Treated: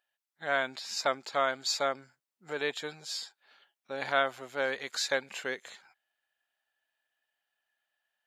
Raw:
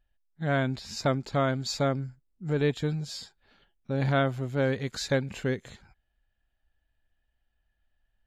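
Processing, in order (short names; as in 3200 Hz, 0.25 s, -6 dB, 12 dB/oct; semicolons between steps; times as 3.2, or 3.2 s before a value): HPF 730 Hz 12 dB/oct; gain +2.5 dB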